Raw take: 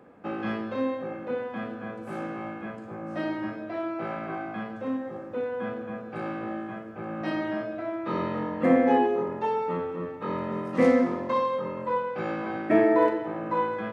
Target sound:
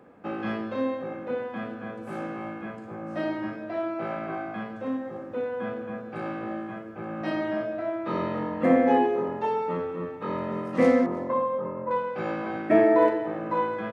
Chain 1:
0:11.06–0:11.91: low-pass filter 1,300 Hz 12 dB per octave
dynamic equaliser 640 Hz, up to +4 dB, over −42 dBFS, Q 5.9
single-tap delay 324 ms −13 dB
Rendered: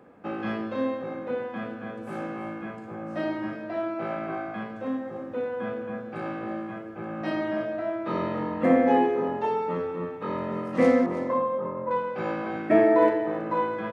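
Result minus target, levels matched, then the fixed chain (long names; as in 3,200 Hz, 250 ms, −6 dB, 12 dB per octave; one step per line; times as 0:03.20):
echo-to-direct +8 dB
0:11.06–0:11.91: low-pass filter 1,300 Hz 12 dB per octave
dynamic equaliser 640 Hz, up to +4 dB, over −42 dBFS, Q 5.9
single-tap delay 324 ms −21 dB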